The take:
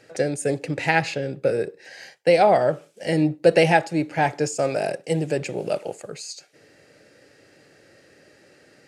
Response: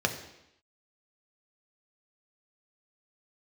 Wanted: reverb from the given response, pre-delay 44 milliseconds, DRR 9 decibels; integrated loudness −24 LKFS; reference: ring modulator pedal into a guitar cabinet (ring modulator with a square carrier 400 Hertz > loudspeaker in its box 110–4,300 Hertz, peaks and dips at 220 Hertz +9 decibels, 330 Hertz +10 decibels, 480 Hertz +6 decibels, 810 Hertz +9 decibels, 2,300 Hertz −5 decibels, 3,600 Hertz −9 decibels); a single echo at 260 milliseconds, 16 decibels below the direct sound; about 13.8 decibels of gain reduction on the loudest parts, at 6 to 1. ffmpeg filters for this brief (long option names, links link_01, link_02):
-filter_complex "[0:a]acompressor=threshold=-27dB:ratio=6,aecho=1:1:260:0.158,asplit=2[link_01][link_02];[1:a]atrim=start_sample=2205,adelay=44[link_03];[link_02][link_03]afir=irnorm=-1:irlink=0,volume=-19dB[link_04];[link_01][link_04]amix=inputs=2:normalize=0,aeval=exprs='val(0)*sgn(sin(2*PI*400*n/s))':channel_layout=same,highpass=110,equalizer=frequency=220:width_type=q:width=4:gain=9,equalizer=frequency=330:width_type=q:width=4:gain=10,equalizer=frequency=480:width_type=q:width=4:gain=6,equalizer=frequency=810:width_type=q:width=4:gain=9,equalizer=frequency=2300:width_type=q:width=4:gain=-5,equalizer=frequency=3600:width_type=q:width=4:gain=-9,lowpass=frequency=4300:width=0.5412,lowpass=frequency=4300:width=1.3066,volume=3.5dB"